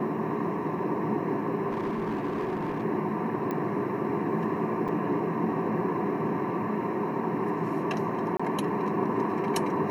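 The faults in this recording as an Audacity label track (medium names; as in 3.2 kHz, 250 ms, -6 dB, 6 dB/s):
1.700000	2.840000	clipped -26 dBFS
3.510000	3.510000	pop -20 dBFS
4.880000	4.890000	dropout 5.7 ms
8.370000	8.390000	dropout 25 ms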